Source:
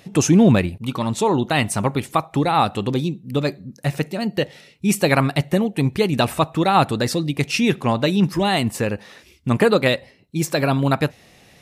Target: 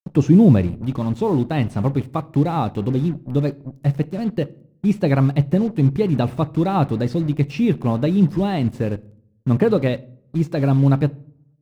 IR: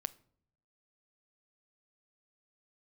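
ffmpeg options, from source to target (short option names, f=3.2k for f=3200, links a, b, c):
-filter_complex "[0:a]acrusher=bits=4:mix=0:aa=0.5,tiltshelf=f=760:g=5.5,acrossover=split=5000[a][b];[b]acompressor=threshold=-47dB:ratio=4:attack=1:release=60[c];[a][c]amix=inputs=2:normalize=0,asplit=2[d][e];[1:a]atrim=start_sample=2205,lowshelf=f=470:g=6.5[f];[e][f]afir=irnorm=-1:irlink=0,volume=8.5dB[g];[d][g]amix=inputs=2:normalize=0,volume=-17dB"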